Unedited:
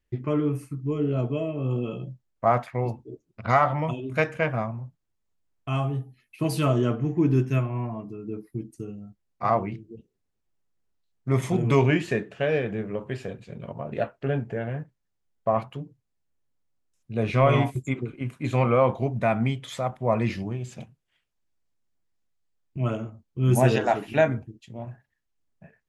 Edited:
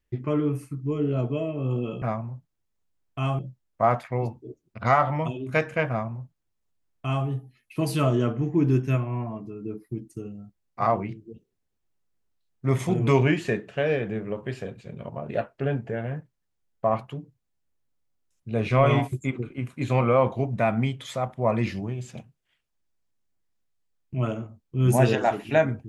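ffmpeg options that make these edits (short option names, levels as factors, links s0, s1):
-filter_complex "[0:a]asplit=3[s0][s1][s2];[s0]atrim=end=2.022[s3];[s1]atrim=start=4.518:end=5.892[s4];[s2]atrim=start=2.018[s5];[s3][s4]acrossfade=d=0.004:c1=hsin:c2=hsin[s6];[s6][s5]acrossfade=d=0.004:c1=hsin:c2=hsin"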